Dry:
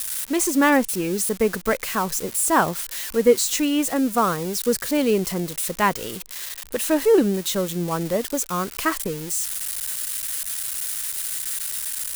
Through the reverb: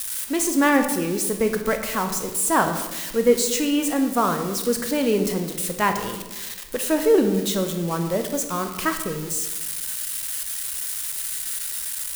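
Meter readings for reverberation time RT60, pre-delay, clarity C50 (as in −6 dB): 1.3 s, 18 ms, 8.0 dB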